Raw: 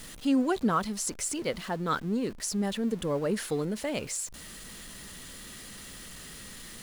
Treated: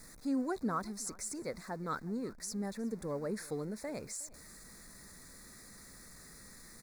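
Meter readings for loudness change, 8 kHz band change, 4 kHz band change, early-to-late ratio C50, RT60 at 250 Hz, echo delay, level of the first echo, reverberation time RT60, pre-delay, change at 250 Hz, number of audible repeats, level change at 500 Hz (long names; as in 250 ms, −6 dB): −8.5 dB, −8.5 dB, −13.0 dB, no reverb audible, no reverb audible, 364 ms, −21.5 dB, no reverb audible, no reverb audible, −8.5 dB, 1, −8.5 dB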